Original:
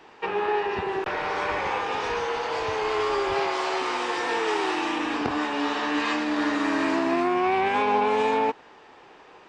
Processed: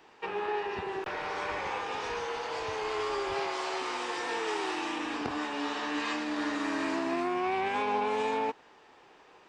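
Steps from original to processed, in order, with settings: treble shelf 5.7 kHz +7 dB; trim -7.5 dB

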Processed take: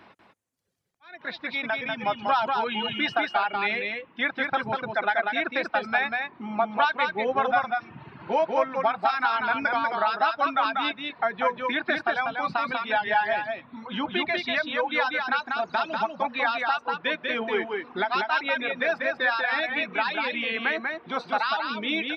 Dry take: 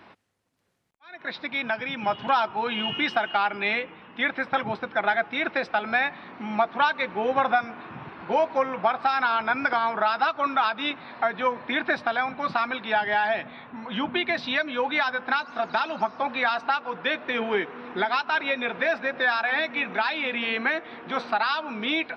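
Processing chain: reverb removal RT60 1.6 s; 6.10–6.69 s: treble shelf 4.2 kHz -> 3.4 kHz -12 dB; on a send: delay 192 ms -4 dB; on the sum: trim -1 dB

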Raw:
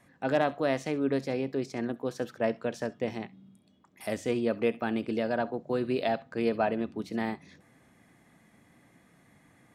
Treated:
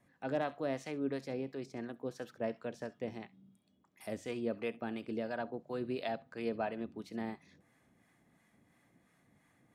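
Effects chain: harmonic tremolo 2.9 Hz, depth 50%, crossover 690 Hz; trim -6.5 dB

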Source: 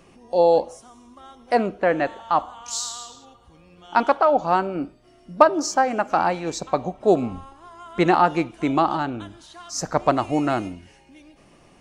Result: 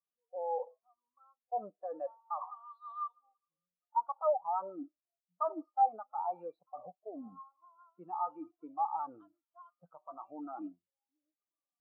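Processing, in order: flange 0.45 Hz, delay 0.9 ms, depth 5.6 ms, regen +57%; dynamic bell 900 Hz, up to +6 dB, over -36 dBFS, Q 3; reverse; compression 12:1, threshold -28 dBFS, peak gain reduction 19 dB; reverse; peak limiter -28 dBFS, peak gain reduction 10 dB; cabinet simulation 190–3400 Hz, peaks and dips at 240 Hz -9 dB, 370 Hz -6 dB, 1.2 kHz +7 dB, 2 kHz -9 dB; level-controlled noise filter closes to 1.3 kHz, open at -34.5 dBFS; spectral contrast expander 2.5:1; trim +5 dB

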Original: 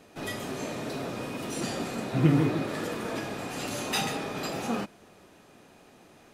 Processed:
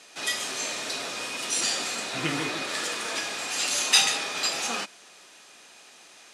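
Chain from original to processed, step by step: frequency weighting ITU-R 468; trim +2 dB

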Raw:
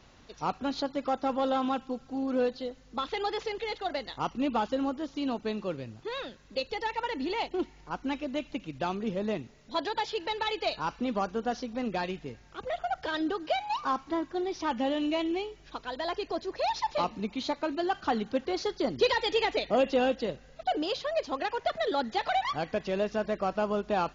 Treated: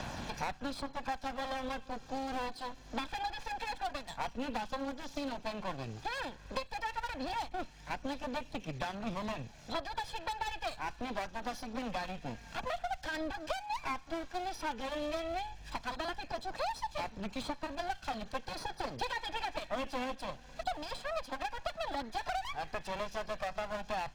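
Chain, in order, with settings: comb filter that takes the minimum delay 1.2 ms; phaser 0.12 Hz, delay 4.4 ms, feedback 26%; three bands compressed up and down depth 100%; trim -5.5 dB

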